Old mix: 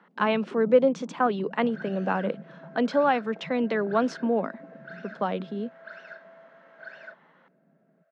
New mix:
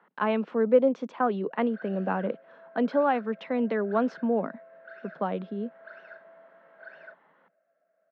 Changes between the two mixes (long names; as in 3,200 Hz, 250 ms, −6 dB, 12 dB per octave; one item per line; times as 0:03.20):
first sound: muted
master: add head-to-tape spacing loss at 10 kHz 25 dB